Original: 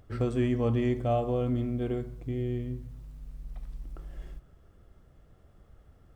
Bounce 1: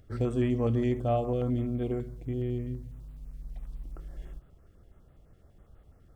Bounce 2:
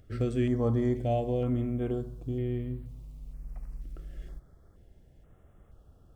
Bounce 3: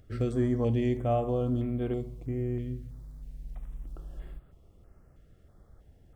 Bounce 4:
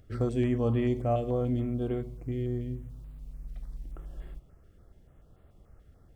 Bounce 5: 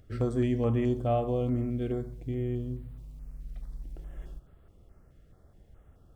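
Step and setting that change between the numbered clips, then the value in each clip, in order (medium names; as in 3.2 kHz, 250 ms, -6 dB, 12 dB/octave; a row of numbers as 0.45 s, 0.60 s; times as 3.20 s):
step-sequenced notch, rate: 12 Hz, 2.1 Hz, 3.1 Hz, 6.9 Hz, 4.7 Hz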